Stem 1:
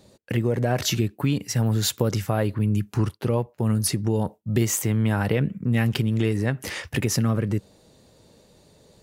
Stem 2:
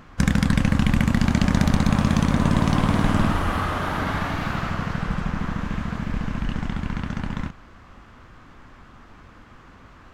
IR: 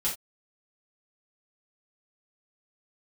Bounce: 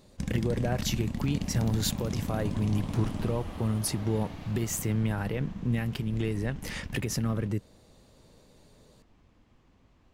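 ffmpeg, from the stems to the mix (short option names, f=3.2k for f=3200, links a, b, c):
-filter_complex "[0:a]alimiter=limit=-13.5dB:level=0:latency=1:release=368,volume=-5dB[a];[1:a]equalizer=f=1.4k:w=1.4:g=-13,volume=-13.5dB[b];[a][b]amix=inputs=2:normalize=0"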